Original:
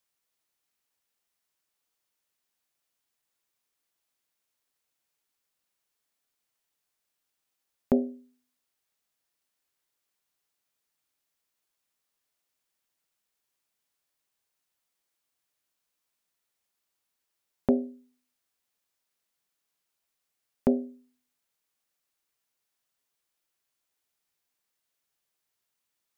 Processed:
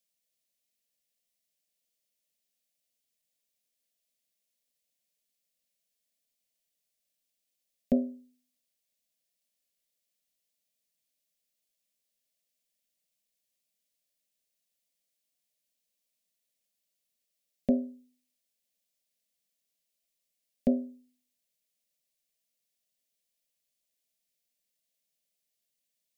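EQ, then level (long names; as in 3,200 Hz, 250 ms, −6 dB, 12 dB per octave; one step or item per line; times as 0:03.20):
Butterworth band-reject 900 Hz, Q 1.8
phaser with its sweep stopped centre 360 Hz, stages 6
0.0 dB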